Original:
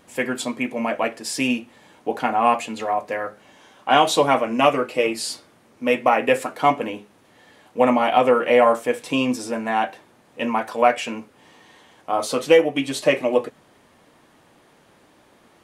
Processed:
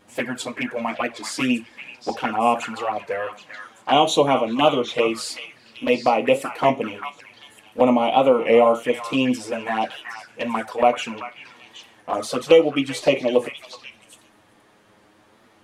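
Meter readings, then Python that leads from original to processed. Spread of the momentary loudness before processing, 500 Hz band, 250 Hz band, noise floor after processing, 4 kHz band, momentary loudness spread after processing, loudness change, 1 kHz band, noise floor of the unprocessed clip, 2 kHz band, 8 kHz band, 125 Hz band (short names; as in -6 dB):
13 LU, +0.5 dB, +0.5 dB, -56 dBFS, +1.0 dB, 19 LU, -0.5 dB, -1.5 dB, -56 dBFS, -2.0 dB, -2.5 dB, +1.5 dB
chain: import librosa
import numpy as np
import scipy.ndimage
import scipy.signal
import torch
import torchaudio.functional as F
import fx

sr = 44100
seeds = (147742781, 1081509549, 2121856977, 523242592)

p1 = fx.high_shelf(x, sr, hz=8600.0, db=-4.5)
p2 = fx.env_flanger(p1, sr, rest_ms=10.1, full_db=-16.0)
p3 = p2 + fx.echo_stepped(p2, sr, ms=386, hz=1600.0, octaves=1.4, feedback_pct=70, wet_db=-4, dry=0)
p4 = fx.record_warp(p3, sr, rpm=33.33, depth_cents=100.0)
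y = p4 * librosa.db_to_amplitude(2.0)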